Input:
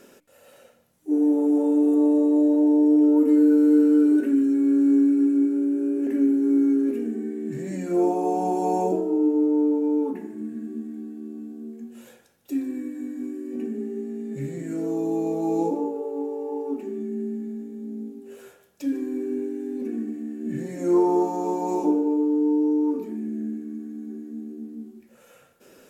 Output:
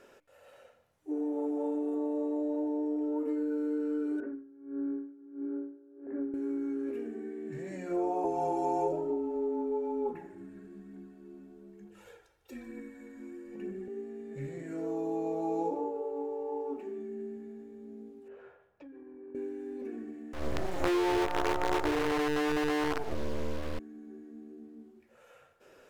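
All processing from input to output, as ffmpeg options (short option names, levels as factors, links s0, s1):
-filter_complex "[0:a]asettb=1/sr,asplit=3[s0][s1][s2];[s0]atrim=end=4.204[s3];[s1]atrim=start=4.2:end=6.34,asetpts=PTS-STARTPTS,afade=t=in:d=0.004:c=qsin,afade=t=out:st=2.136:d=0.004:c=qsin,lowpass=f=1500:w=0.5412,lowpass=f=1500:w=1.3066,aeval=exprs='val(0)*pow(10,-23*(0.5-0.5*cos(2*PI*1.5*n/s))/20)':c=same[s4];[s2]atrim=start=6.336[s5];[s3][s4]acrossfade=d=0.004:c1=hsin:c2=qsin[s6];[s6][s5]acrossfade=d=0.004:c1=qsin:c2=hsin,asettb=1/sr,asplit=3[s7][s8][s9];[s7]atrim=end=8.244[s10];[s8]atrim=start=8.24:end=13.88,asetpts=PTS-STARTPTS,afade=t=in:d=0.004:c=qsin,afade=t=out:st=5.636:d=0.004:c=qsin,afreqshift=-29,aecho=1:1:2.2:0.36,atrim=end_sample=248724,aphaser=in_gain=1:out_gain=1:delay=3.5:decay=0.33:speed=1.1:type=triangular[s11];[s9]atrim=start=13.876[s12];[s10][s11]acrossfade=d=0.004:c1=hsin:c2=qsin[s13];[s13][s12]acrossfade=d=0.004:c1=qsin:c2=hsin,asettb=1/sr,asplit=3[s14][s15][s16];[s14]atrim=end=18.284[s17];[s15]atrim=start=18.28:end=19.35,asetpts=PTS-STARTPTS,afade=t=in:d=0.004:c=qsin,afade=t=out:st=1.066:d=0.004:c=qsin,lowpass=1800,acompressor=threshold=0.0141:ratio=5:attack=3.2:release=140:knee=1:detection=peak[s18];[s16]atrim=start=19.346[s19];[s17][s18]acrossfade=d=0.004:c1=hsin:c2=qsin[s20];[s20][s19]acrossfade=d=0.004:c1=qsin:c2=hsin,asettb=1/sr,asplit=3[s21][s22][s23];[s21]atrim=end=20.334[s24];[s22]atrim=start=20.33:end=23.79,asetpts=PTS-STARTPTS,afade=t=in:d=0.004:c=qsin,afade=t=out:st=3.456:d=0.004:c=qsin,adynamicequalizer=threshold=0.0178:dfrequency=420:dqfactor=1.3:tfrequency=420:tqfactor=1.3:attack=5:release=100:ratio=0.375:range=3:mode=boostabove:tftype=bell,acrusher=bits=4:dc=4:mix=0:aa=0.000001,acontrast=76[s25];[s23]atrim=start=23.786[s26];[s24][s25]acrossfade=d=0.004:c1=hsin:c2=qsin[s27];[s27][s26]acrossfade=d=0.004:c1=qsin:c2=hsin,acompressor=threshold=0.1:ratio=6,lowpass=f=1700:p=1,equalizer=f=220:w=0.93:g=-14.5"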